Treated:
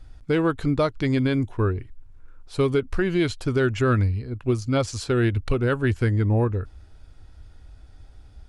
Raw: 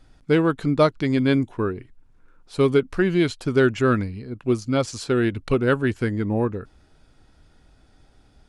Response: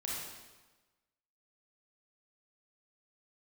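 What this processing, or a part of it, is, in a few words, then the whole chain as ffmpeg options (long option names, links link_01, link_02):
car stereo with a boomy subwoofer: -af "lowshelf=frequency=120:width_type=q:width=1.5:gain=9.5,alimiter=limit=-12.5dB:level=0:latency=1:release=127"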